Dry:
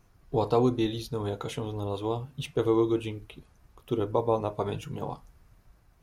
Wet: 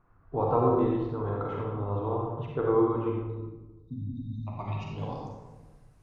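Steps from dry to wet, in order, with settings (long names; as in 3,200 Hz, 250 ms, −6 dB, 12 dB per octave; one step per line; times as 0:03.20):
low-pass filter sweep 1,300 Hz → 9,400 Hz, 0:03.85–0:05.62
0:04.36–0:04.91: phaser with its sweep stopped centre 2,300 Hz, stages 8
0:03.20–0:04.47: time-frequency box erased 280–3,600 Hz
convolution reverb RT60 1.2 s, pre-delay 39 ms, DRR −2.5 dB
level −5.5 dB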